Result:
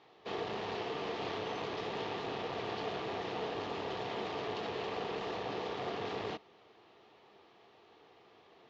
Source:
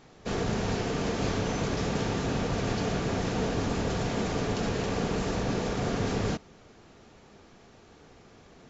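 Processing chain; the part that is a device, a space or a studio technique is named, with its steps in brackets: guitar amplifier (tube stage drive 23 dB, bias 0.45; tone controls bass -13 dB, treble +5 dB; speaker cabinet 110–3500 Hz, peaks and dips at 170 Hz -6 dB, 250 Hz -9 dB, 560 Hz -6 dB, 1500 Hz -9 dB, 2300 Hz -4 dB)

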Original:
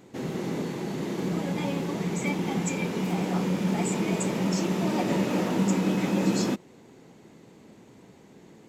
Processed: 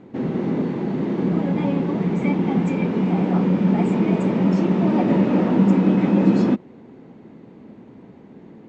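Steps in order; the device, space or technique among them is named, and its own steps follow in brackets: phone in a pocket (LPF 3800 Hz 12 dB/oct; bell 240 Hz +5.5 dB 0.64 oct; high shelf 2500 Hz -12 dB); gain +6 dB

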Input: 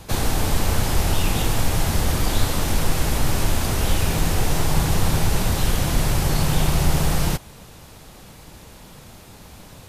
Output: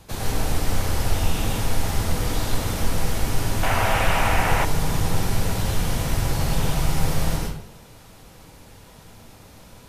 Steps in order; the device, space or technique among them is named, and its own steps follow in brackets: bathroom (reverb RT60 0.65 s, pre-delay 93 ms, DRR -2.5 dB); 3.63–4.65 band shelf 1300 Hz +11.5 dB 2.5 oct; gain -7.5 dB

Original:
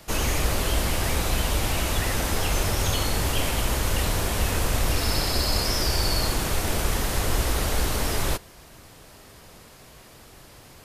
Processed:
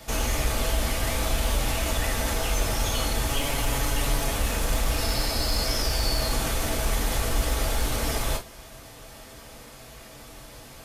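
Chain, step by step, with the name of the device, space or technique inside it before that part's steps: 3.29–4.33 comb 7.1 ms, depth 55%; clipper into limiter (hard clip -15.5 dBFS, distortion -25 dB; limiter -21 dBFS, peak gain reduction 5.5 dB); non-linear reverb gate 80 ms falling, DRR -0.5 dB

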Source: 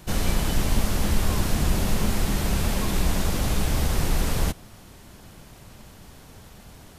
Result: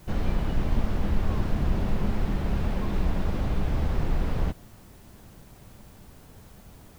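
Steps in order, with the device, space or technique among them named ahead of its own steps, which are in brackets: cassette deck with a dirty head (tape spacing loss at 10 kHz 31 dB; wow and flutter; white noise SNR 34 dB); gain -2 dB

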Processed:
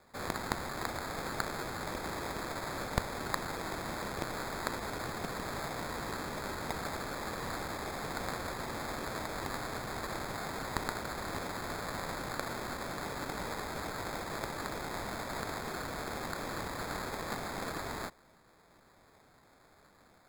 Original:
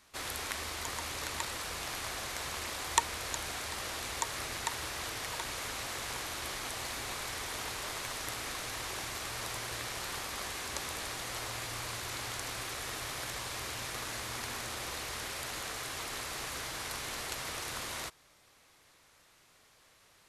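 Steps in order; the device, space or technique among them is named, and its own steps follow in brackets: elliptic band-stop 110–4900 Hz; tilt shelf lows -7 dB; crushed at another speed (playback speed 0.8×; sample-and-hold 19×; playback speed 1.25×)

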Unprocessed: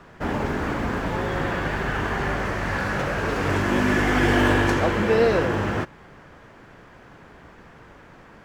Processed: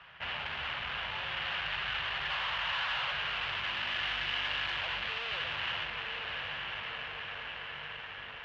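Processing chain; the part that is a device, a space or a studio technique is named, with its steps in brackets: 2.3–3.12 bell 1000 Hz +11 dB 1 oct; diffused feedback echo 0.958 s, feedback 60%, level -10 dB; scooped metal amplifier (tube stage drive 33 dB, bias 0.75; speaker cabinet 90–3500 Hz, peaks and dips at 98 Hz -8 dB, 200 Hz -6 dB, 440 Hz -4 dB, 2900 Hz +9 dB; passive tone stack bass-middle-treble 10-0-10); gain +7 dB

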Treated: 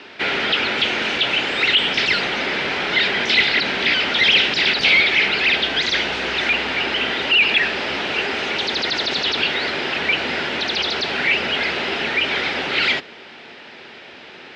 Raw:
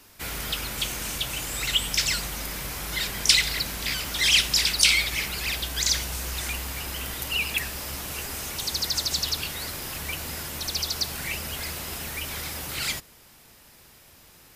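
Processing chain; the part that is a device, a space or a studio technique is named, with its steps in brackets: overdrive pedal into a guitar cabinet (overdrive pedal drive 28 dB, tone 7500 Hz, clips at -2.5 dBFS; speaker cabinet 95–3500 Hz, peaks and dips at 120 Hz -4 dB, 240 Hz +5 dB, 390 Hz +7 dB, 1100 Hz -8 dB); gain -2 dB

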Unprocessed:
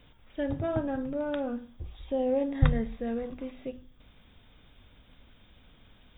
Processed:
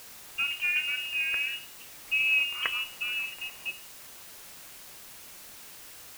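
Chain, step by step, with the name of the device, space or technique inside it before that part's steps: scrambled radio voice (BPF 360–2800 Hz; inverted band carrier 3100 Hz; white noise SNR 14 dB); gain +3.5 dB

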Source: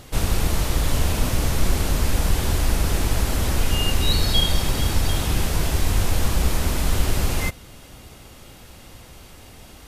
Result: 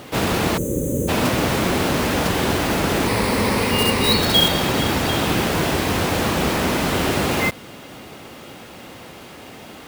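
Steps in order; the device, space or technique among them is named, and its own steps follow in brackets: early digital voice recorder (BPF 230–3400 Hz; block floating point 3-bit); low shelf 250 Hz +5.5 dB; 0.58–1.09 spectral gain 590–6000 Hz -29 dB; 3.07–4.18 ripple EQ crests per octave 0.91, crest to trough 7 dB; gain +8.5 dB

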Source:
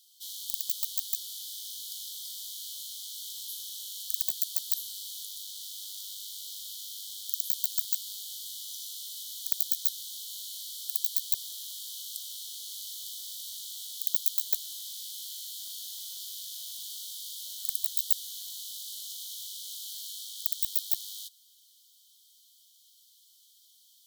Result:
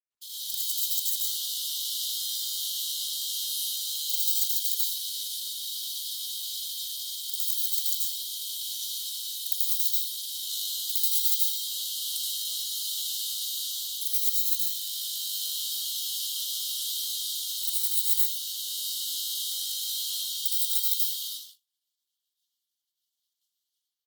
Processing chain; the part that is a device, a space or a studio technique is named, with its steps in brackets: speakerphone in a meeting room (reverb RT60 0.80 s, pre-delay 76 ms, DRR -5 dB; speakerphone echo 0.16 s, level -20 dB; AGC gain up to 4 dB; gate -47 dBFS, range -44 dB; Opus 16 kbps 48000 Hz)

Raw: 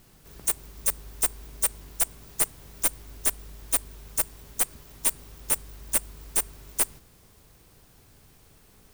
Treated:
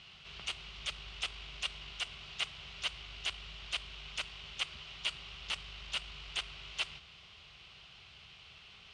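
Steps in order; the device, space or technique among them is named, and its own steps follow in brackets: scooped metal amplifier (tube stage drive 29 dB, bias 0.3; speaker cabinet 110–3800 Hz, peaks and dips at 110 Hz -8 dB, 350 Hz +5 dB, 500 Hz -5 dB, 910 Hz -5 dB, 1700 Hz -8 dB, 2900 Hz +8 dB; passive tone stack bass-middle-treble 10-0-10); gain +14 dB

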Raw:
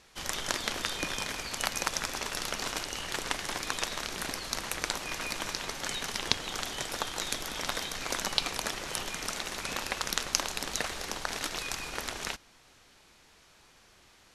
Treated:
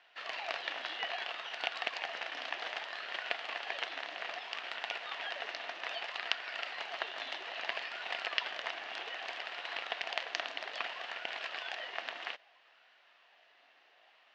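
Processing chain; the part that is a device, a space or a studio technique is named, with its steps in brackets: voice changer toy (ring modulator with a swept carrier 870 Hz, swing 70%, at 0.62 Hz; speaker cabinet 560–4000 Hz, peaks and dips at 690 Hz +10 dB, 1800 Hz +7 dB, 2800 Hz +7 dB); gain -4 dB

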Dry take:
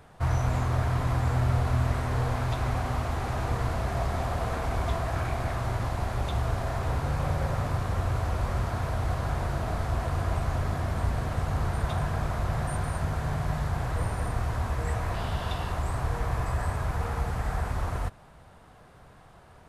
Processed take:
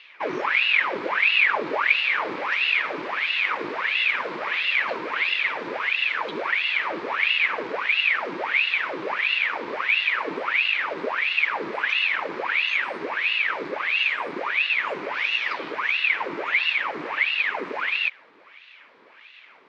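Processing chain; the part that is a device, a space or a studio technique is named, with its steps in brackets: voice changer toy (ring modulator with a swept carrier 1500 Hz, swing 85%, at 1.5 Hz; speaker cabinet 450–4500 Hz, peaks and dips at 730 Hz -8 dB, 1400 Hz -3 dB, 2300 Hz +6 dB); gain +5.5 dB

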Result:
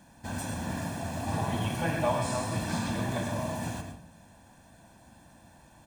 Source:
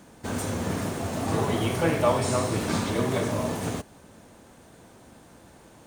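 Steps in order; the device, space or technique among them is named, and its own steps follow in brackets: microphone above a desk (comb 1.2 ms, depth 72%; reverb RT60 0.50 s, pre-delay 96 ms, DRR 5.5 dB); gain -7 dB

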